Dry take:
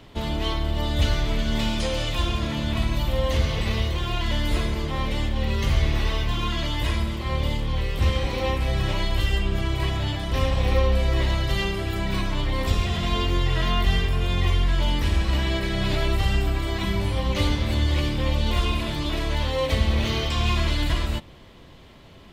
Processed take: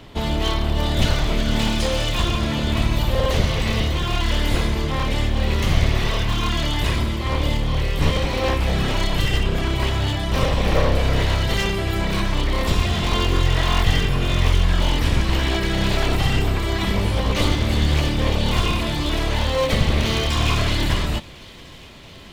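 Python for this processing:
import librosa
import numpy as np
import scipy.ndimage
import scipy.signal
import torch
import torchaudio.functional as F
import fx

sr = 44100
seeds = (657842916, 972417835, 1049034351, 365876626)

y = np.minimum(x, 2.0 * 10.0 ** (-22.0 / 20.0) - x)
y = fx.echo_wet_highpass(y, sr, ms=676, feedback_pct=77, hz=1800.0, wet_db=-21.0)
y = F.gain(torch.from_numpy(y), 5.0).numpy()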